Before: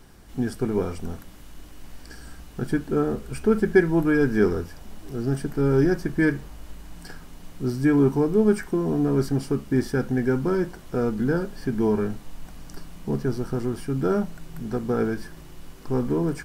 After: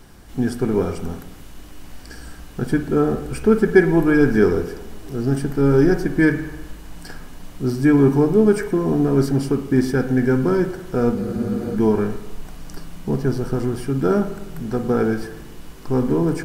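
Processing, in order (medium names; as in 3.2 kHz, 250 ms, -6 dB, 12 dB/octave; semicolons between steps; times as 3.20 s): spring tank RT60 1 s, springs 50/54 ms, chirp 75 ms, DRR 9.5 dB; spectral freeze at 11.16 s, 0.61 s; trim +4.5 dB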